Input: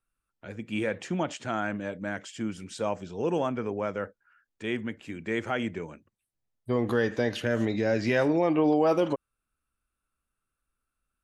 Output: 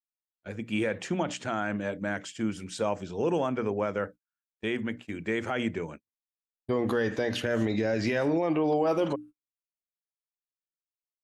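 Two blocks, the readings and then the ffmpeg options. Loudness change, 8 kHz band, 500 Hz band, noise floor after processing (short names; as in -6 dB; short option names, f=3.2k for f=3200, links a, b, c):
-1.0 dB, +2.0 dB, -1.0 dB, under -85 dBFS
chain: -af "bandreject=f=60:t=h:w=6,bandreject=f=120:t=h:w=6,bandreject=f=180:t=h:w=6,bandreject=f=240:t=h:w=6,bandreject=f=300:t=h:w=6,agate=range=-38dB:threshold=-44dB:ratio=16:detection=peak,alimiter=limit=-20.5dB:level=0:latency=1:release=50,volume=2.5dB"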